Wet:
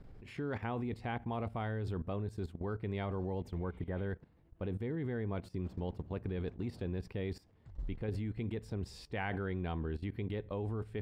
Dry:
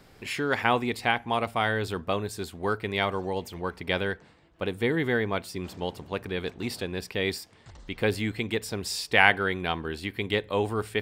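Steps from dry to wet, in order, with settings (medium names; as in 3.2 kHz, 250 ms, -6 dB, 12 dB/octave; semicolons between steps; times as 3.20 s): tilt EQ -4 dB/octave; spectral replace 3.63–4.01 s, 2–7.2 kHz both; level held to a coarse grid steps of 15 dB; trim -6.5 dB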